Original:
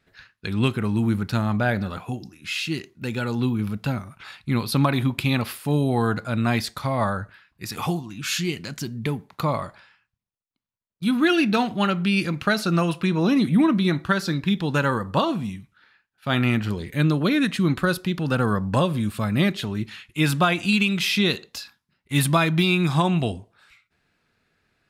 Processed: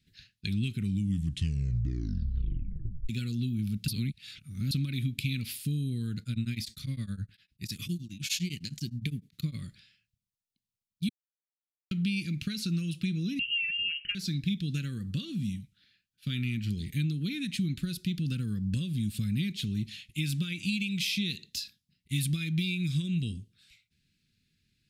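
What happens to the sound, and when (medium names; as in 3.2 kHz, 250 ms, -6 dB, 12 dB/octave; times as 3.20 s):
0.77 s: tape stop 2.32 s
3.88–4.71 s: reverse
6.20–9.55 s: tremolo of two beating tones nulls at 9.8 Hz
11.09–11.91 s: mute
13.39–14.15 s: frequency inversion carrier 3 kHz
whole clip: dynamic bell 2.3 kHz, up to +7 dB, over -44 dBFS, Q 6.3; compression, threshold -25 dBFS; Chebyshev band-stop 190–3500 Hz, order 2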